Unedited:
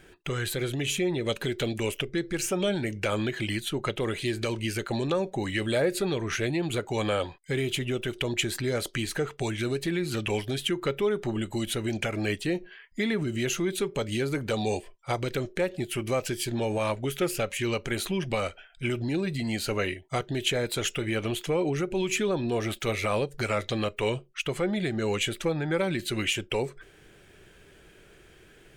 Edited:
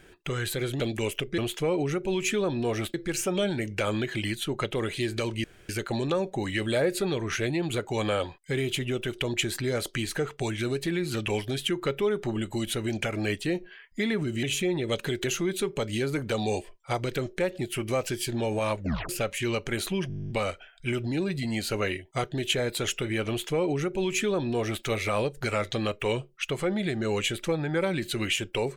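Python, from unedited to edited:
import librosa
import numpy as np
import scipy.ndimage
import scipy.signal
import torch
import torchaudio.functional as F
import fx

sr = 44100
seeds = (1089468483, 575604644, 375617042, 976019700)

y = fx.edit(x, sr, fx.move(start_s=0.8, length_s=0.81, to_s=13.43),
    fx.insert_room_tone(at_s=4.69, length_s=0.25),
    fx.tape_stop(start_s=16.97, length_s=0.31),
    fx.stutter(start_s=18.27, slice_s=0.02, count=12),
    fx.duplicate(start_s=21.25, length_s=1.56, to_s=2.19), tone=tone)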